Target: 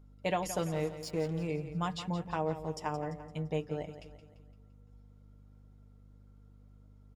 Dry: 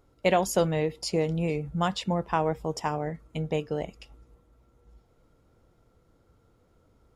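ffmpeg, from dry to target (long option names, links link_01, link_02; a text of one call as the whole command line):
ffmpeg -i in.wav -filter_complex "[0:a]aecho=1:1:6.6:0.51,asettb=1/sr,asplit=3[link_01][link_02][link_03];[link_01]atrim=end=0.574[link_04];[link_02]atrim=start=0.57:end=1.48,asetpts=PTS-STARTPTS,afade=type=in:duration=0.004:curve=qsin,afade=type=out:start_time=0.906:duration=0.004:curve=qsin,aeval=exprs='sgn(val(0))*max(abs(val(0))-0.0112,0)':channel_layout=same[link_05];[link_03]atrim=start=1.476[link_06];[link_04][link_05]acrossfade=duration=0.004:curve1=hsin:curve2=qsin[link_07];[link_07][link_06]acrossfade=duration=0.004:curve1=qsin:curve2=hsin,aeval=exprs='val(0)+0.00501*(sin(2*PI*50*n/s)+sin(2*PI*2*50*n/s)/2+sin(2*PI*3*50*n/s)/3+sin(2*PI*4*50*n/s)/4+sin(2*PI*5*50*n/s)/5)':channel_layout=same,asplit=2[link_08][link_09];[link_09]aecho=0:1:171|342|513|684|855:0.251|0.118|0.0555|0.0261|0.0123[link_10];[link_08][link_10]amix=inputs=2:normalize=0,volume=-9dB" out.wav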